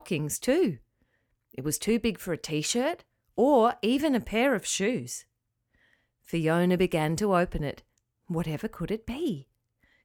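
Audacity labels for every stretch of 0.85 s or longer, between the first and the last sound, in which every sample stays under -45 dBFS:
5.210000	6.280000	silence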